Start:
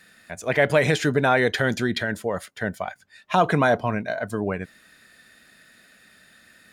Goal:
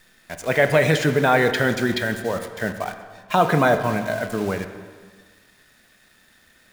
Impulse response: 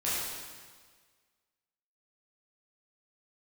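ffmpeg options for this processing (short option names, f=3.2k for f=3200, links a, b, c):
-filter_complex "[0:a]acrusher=bits=7:dc=4:mix=0:aa=0.000001,asplit=2[a][b];[1:a]atrim=start_sample=2205,highshelf=f=4.8k:g=-11[c];[b][c]afir=irnorm=-1:irlink=0,volume=-13dB[d];[a][d]amix=inputs=2:normalize=0"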